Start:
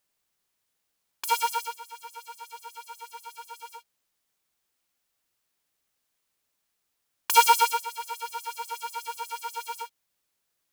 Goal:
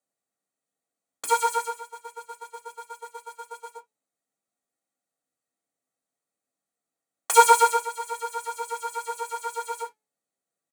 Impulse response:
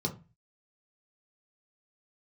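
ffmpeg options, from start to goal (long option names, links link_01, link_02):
-filter_complex "[0:a]aecho=1:1:1.6:0.32,bandreject=frequency=431.5:width_type=h:width=4,bandreject=frequency=863:width_type=h:width=4,bandreject=frequency=1294.5:width_type=h:width=4,bandreject=frequency=1726:width_type=h:width=4,bandreject=frequency=2157.5:width_type=h:width=4,bandreject=frequency=2589:width_type=h:width=4,bandreject=frequency=3020.5:width_type=h:width=4,bandreject=frequency=3452:width_type=h:width=4,bandreject=frequency=3883.5:width_type=h:width=4,bandreject=frequency=4315:width_type=h:width=4,bandreject=frequency=4746.5:width_type=h:width=4,bandreject=frequency=5178:width_type=h:width=4,bandreject=frequency=5609.5:width_type=h:width=4,bandreject=frequency=6041:width_type=h:width=4,bandreject=frequency=6472.5:width_type=h:width=4,bandreject=frequency=6904:width_type=h:width=4,bandreject=frequency=7335.5:width_type=h:width=4,bandreject=frequency=7767:width_type=h:width=4,bandreject=frequency=8198.5:width_type=h:width=4,bandreject=frequency=8630:width_type=h:width=4,bandreject=frequency=9061.5:width_type=h:width=4,bandreject=frequency=9493:width_type=h:width=4,bandreject=frequency=9924.5:width_type=h:width=4,bandreject=frequency=10356:width_type=h:width=4,bandreject=frequency=10787.5:width_type=h:width=4,bandreject=frequency=11219:width_type=h:width=4,bandreject=frequency=11650.5:width_type=h:width=4,bandreject=frequency=12082:width_type=h:width=4,agate=range=-12dB:threshold=-45dB:ratio=16:detection=peak[link_01];[1:a]atrim=start_sample=2205,afade=type=out:start_time=0.19:duration=0.01,atrim=end_sample=8820,asetrate=79380,aresample=44100[link_02];[link_01][link_02]afir=irnorm=-1:irlink=0,volume=2.5dB"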